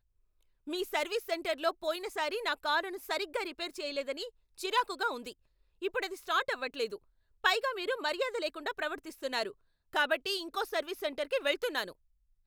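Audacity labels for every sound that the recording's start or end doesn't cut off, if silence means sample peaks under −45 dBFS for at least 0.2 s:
0.670000	4.290000	sound
4.580000	5.320000	sound
5.820000	6.960000	sound
7.440000	9.520000	sound
9.930000	11.920000	sound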